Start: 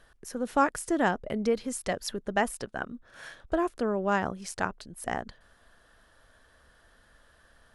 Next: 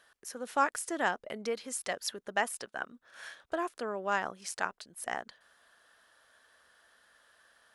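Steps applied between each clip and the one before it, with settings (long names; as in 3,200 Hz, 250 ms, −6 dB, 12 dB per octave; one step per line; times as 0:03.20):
high-pass filter 970 Hz 6 dB per octave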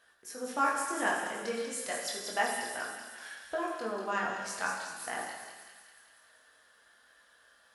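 chorus effect 0.33 Hz, delay 18.5 ms, depth 6.8 ms
delay with a high-pass on its return 191 ms, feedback 64%, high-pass 2,700 Hz, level −5 dB
dense smooth reverb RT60 1.3 s, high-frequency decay 0.8×, DRR −1 dB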